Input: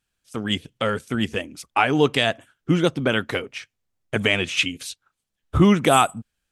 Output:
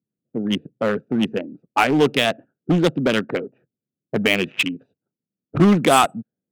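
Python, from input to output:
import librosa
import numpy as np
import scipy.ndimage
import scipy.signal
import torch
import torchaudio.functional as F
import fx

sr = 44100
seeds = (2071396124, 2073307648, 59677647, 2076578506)

p1 = fx.wiener(x, sr, points=41)
p2 = fx.env_lowpass(p1, sr, base_hz=360.0, full_db=-15.0)
p3 = scipy.signal.sosfilt(scipy.signal.butter(4, 150.0, 'highpass', fs=sr, output='sos'), p2)
p4 = 10.0 ** (-20.5 / 20.0) * (np.abs((p3 / 10.0 ** (-20.5 / 20.0) + 3.0) % 4.0 - 2.0) - 1.0)
p5 = p3 + (p4 * librosa.db_to_amplitude(-4.5))
y = p5 * librosa.db_to_amplitude(2.0)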